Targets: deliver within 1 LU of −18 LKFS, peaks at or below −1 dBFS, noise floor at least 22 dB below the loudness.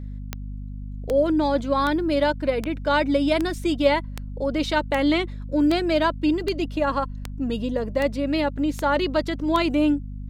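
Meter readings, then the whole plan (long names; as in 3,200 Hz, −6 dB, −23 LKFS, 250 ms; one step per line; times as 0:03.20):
number of clicks 13; mains hum 50 Hz; hum harmonics up to 250 Hz; level of the hum −31 dBFS; integrated loudness −23.0 LKFS; sample peak −7.0 dBFS; target loudness −18.0 LKFS
→ click removal
mains-hum notches 50/100/150/200/250 Hz
level +5 dB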